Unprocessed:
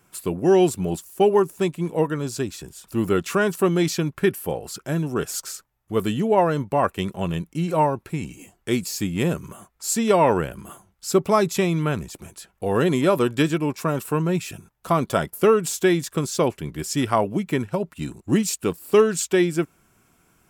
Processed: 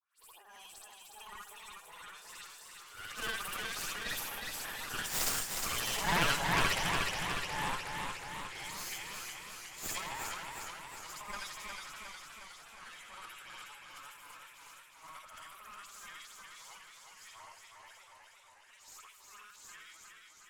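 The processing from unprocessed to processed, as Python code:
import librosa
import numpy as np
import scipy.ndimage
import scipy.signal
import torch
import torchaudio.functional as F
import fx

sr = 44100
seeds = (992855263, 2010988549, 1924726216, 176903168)

y = fx.frame_reverse(x, sr, frame_ms=170.0)
y = fx.doppler_pass(y, sr, speed_mps=18, closest_m=15.0, pass_at_s=5.91)
y = scipy.signal.sosfilt(scipy.signal.butter(4, 1100.0, 'highpass', fs=sr, output='sos'), y)
y = fx.dispersion(y, sr, late='highs', ms=102.0, hz=2600.0)
y = fx.cheby_harmonics(y, sr, harmonics=(6,), levels_db=(-7,), full_scale_db=-20.5)
y = fx.transient(y, sr, attack_db=-4, sustain_db=11)
y = y + 10.0 ** (-15.0 / 20.0) * np.pad(y, (int(158 * sr / 1000.0), 0))[:len(y)]
y = fx.echo_warbled(y, sr, ms=362, feedback_pct=66, rate_hz=2.8, cents=61, wet_db=-4)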